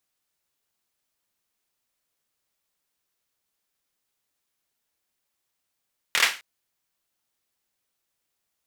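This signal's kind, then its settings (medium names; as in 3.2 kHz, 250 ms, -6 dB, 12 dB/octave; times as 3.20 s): hand clap length 0.26 s, apart 25 ms, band 2.1 kHz, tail 0.32 s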